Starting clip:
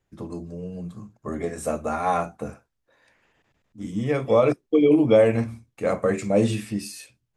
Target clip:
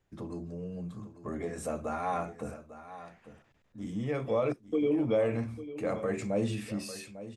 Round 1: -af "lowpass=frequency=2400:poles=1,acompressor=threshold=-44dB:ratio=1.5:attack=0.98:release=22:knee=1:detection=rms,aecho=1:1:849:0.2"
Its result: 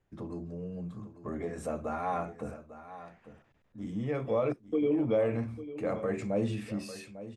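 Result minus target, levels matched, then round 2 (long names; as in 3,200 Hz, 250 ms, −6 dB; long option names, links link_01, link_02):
8,000 Hz band −5.5 dB
-af "lowpass=frequency=6700:poles=1,acompressor=threshold=-44dB:ratio=1.5:attack=0.98:release=22:knee=1:detection=rms,aecho=1:1:849:0.2"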